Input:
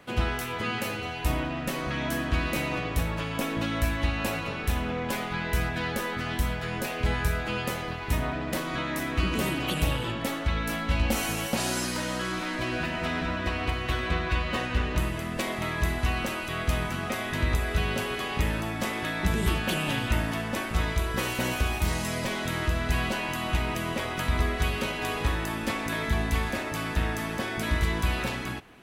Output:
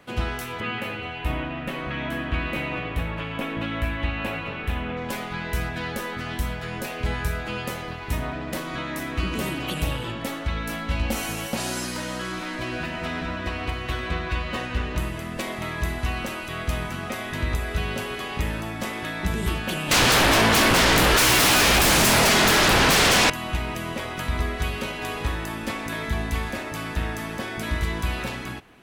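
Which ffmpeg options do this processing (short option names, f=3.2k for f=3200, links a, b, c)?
-filter_complex "[0:a]asettb=1/sr,asplit=3[a][b][c];[a]atrim=end=0.604[d];[b]atrim=start=0.6:end=4.97,asetpts=PTS-STARTPTS,afade=t=in:d=0.004:c=qsin,afade=t=out:st=4.366:d=0.004:c=qsin,highshelf=f=4k:t=q:w=1.5:g=-10[e];[c]atrim=start=4.966[f];[d][e]acrossfade=d=0.004:c1=hsin:c2=qsin[g];[g][f]acrossfade=d=0.004:c1=qsin:c2=hsin,asettb=1/sr,asplit=3[h][i][j];[h]atrim=end=19.914[k];[i]atrim=start=19.91:end=23.3,asetpts=PTS-STARTPTS,afade=t=in:d=0.004:c=qsin,afade=t=out:st=3.386:d=0.004:c=qsin,aeval=exprs='0.188*sin(PI/2*7.08*val(0)/0.188)':c=same[l];[j]atrim=start=23.296[m];[k][l]acrossfade=d=0.004:c1=hsin:c2=qsin[n];[n][m]acrossfade=d=0.004:c1=qsin:c2=hsin"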